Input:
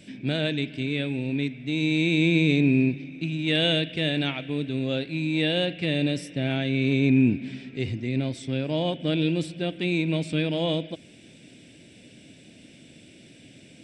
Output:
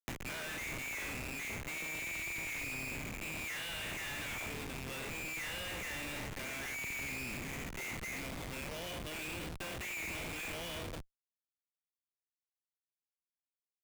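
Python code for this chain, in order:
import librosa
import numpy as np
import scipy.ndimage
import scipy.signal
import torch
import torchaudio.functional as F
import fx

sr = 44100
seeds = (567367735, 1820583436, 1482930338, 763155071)

y = fx.spec_trails(x, sr, decay_s=0.55)
y = fx.bandpass_q(y, sr, hz=2100.0, q=4.0)
y = fx.schmitt(y, sr, flips_db=-48.0)
y = fx.band_squash(y, sr, depth_pct=100)
y = y * librosa.db_to_amplitude(-2.5)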